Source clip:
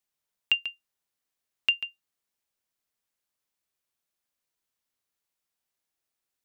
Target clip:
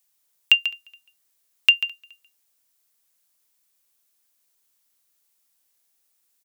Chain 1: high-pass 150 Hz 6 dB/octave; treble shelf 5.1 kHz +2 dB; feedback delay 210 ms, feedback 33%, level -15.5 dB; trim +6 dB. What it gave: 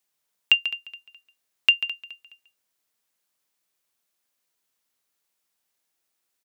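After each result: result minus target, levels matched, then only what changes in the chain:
echo-to-direct +10.5 dB; 8 kHz band -4.5 dB
change: feedback delay 210 ms, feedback 33%, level -26 dB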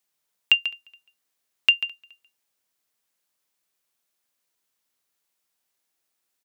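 8 kHz band -4.5 dB
change: treble shelf 5.1 kHz +12 dB

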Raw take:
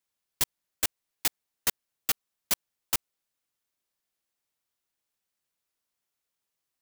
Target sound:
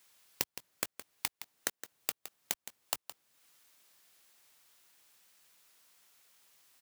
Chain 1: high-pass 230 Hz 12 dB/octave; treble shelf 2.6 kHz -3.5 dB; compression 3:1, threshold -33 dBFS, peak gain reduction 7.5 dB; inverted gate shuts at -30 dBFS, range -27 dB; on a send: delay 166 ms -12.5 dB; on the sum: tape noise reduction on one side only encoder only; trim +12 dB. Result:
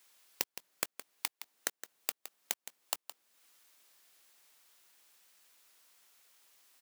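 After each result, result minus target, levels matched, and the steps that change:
125 Hz band -7.5 dB; compression: peak gain reduction +5 dB
change: high-pass 75 Hz 12 dB/octave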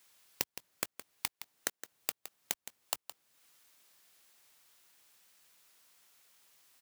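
compression: peak gain reduction +5 dB
change: compression 3:1, threshold -25.5 dBFS, peak gain reduction 2.5 dB

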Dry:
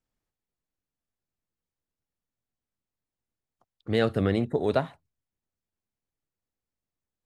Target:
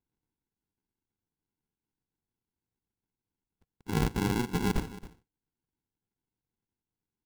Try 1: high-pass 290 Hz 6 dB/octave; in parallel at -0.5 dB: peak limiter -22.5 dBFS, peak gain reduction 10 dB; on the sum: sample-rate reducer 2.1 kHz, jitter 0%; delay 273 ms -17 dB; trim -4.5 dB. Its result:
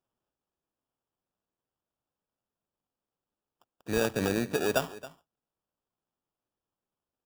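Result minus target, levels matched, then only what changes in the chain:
sample-rate reducer: distortion -39 dB
change: sample-rate reducer 610 Hz, jitter 0%

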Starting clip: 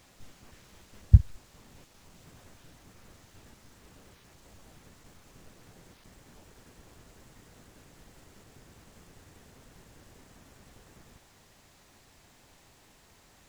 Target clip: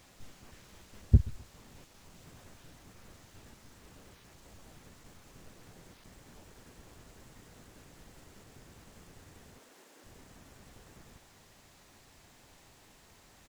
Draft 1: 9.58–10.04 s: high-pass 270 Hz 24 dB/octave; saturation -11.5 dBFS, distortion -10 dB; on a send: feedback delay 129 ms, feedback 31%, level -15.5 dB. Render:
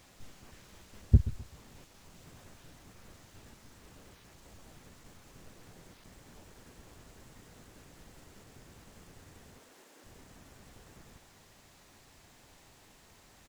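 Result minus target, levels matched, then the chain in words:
echo-to-direct +6 dB
9.58–10.04 s: high-pass 270 Hz 24 dB/octave; saturation -11.5 dBFS, distortion -10 dB; on a send: feedback delay 129 ms, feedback 31%, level -21.5 dB

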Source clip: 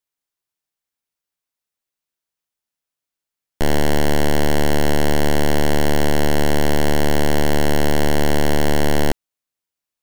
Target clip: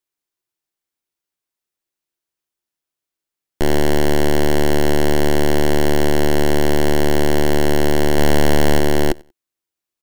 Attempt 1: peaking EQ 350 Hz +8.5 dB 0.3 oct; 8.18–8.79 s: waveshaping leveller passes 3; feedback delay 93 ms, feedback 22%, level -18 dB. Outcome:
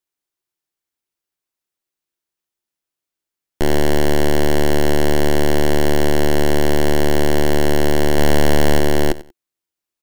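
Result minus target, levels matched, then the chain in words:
echo-to-direct +8.5 dB
peaking EQ 350 Hz +8.5 dB 0.3 oct; 8.18–8.79 s: waveshaping leveller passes 3; feedback delay 93 ms, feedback 22%, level -26.5 dB

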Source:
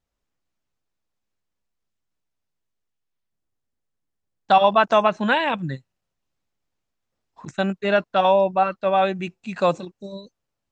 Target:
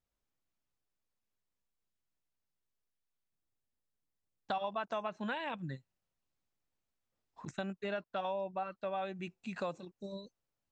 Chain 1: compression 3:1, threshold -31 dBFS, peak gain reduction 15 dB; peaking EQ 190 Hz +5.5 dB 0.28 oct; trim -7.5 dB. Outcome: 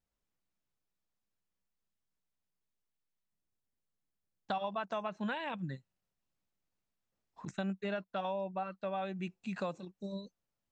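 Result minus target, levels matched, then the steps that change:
250 Hz band +3.0 dB
remove: peaking EQ 190 Hz +5.5 dB 0.28 oct

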